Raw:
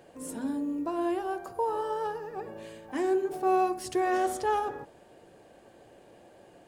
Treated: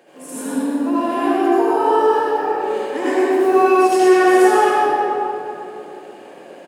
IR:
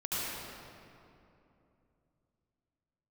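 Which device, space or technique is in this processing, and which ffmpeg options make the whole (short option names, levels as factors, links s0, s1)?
PA in a hall: -filter_complex "[0:a]highpass=f=200:w=0.5412,highpass=f=200:w=1.3066,equalizer=f=2200:t=o:w=0.97:g=4,aecho=1:1:124:0.501[s0];[1:a]atrim=start_sample=2205[s1];[s0][s1]afir=irnorm=-1:irlink=0,volume=2.24"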